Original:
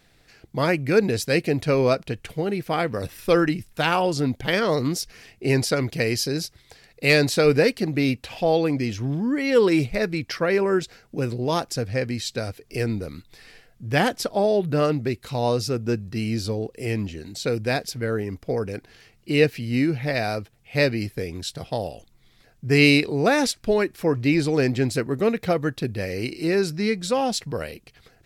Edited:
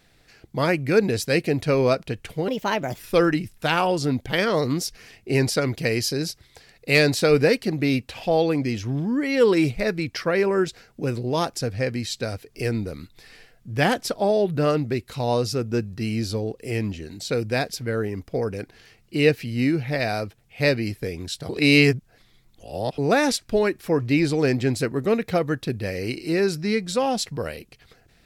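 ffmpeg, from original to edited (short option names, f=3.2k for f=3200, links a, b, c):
-filter_complex "[0:a]asplit=5[a][b][c][d][e];[a]atrim=end=2.484[f];[b]atrim=start=2.48:end=3.14,asetpts=PTS-STARTPTS,asetrate=56889,aresample=44100[g];[c]atrim=start=3.136:end=21.642[h];[d]atrim=start=21.638:end=23.132,asetpts=PTS-STARTPTS,areverse[i];[e]atrim=start=23.128[j];[f][g]acrossfade=d=0.004:c1=hsin:c2=hsin[k];[k][h]acrossfade=d=0.004:c1=hsin:c2=hsin[l];[l][i]acrossfade=d=0.004:c1=hsin:c2=hsin[m];[m][j]acrossfade=d=0.004:c1=hsin:c2=hsin"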